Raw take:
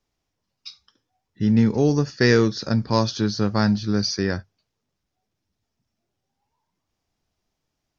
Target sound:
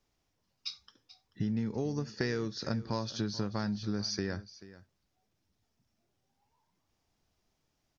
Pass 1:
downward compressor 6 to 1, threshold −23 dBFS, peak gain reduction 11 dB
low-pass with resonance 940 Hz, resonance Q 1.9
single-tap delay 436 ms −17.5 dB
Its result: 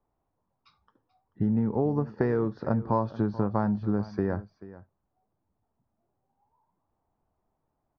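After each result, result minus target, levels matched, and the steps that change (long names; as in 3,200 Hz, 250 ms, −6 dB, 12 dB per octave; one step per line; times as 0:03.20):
downward compressor: peak gain reduction −6.5 dB; 1,000 Hz band +4.0 dB
change: downward compressor 6 to 1, threshold −31 dBFS, peak gain reduction 18 dB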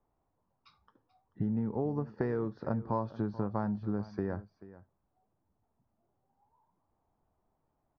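1,000 Hz band +4.0 dB
remove: low-pass with resonance 940 Hz, resonance Q 1.9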